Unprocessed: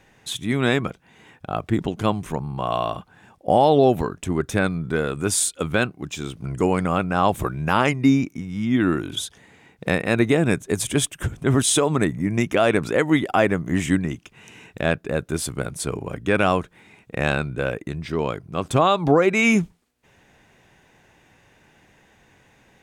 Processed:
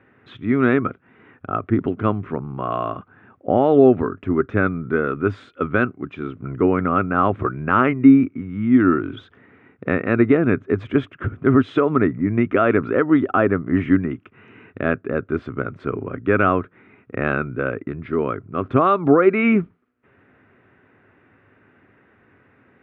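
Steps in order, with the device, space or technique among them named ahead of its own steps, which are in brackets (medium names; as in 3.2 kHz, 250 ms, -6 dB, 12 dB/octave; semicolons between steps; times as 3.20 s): bass cabinet (cabinet simulation 84–2300 Hz, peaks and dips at 100 Hz +7 dB, 160 Hz -3 dB, 260 Hz +8 dB, 390 Hz +6 dB, 850 Hz -6 dB, 1.3 kHz +10 dB); 12.93–13.52 s: dynamic bell 2.1 kHz, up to -8 dB, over -41 dBFS, Q 4.4; trim -1 dB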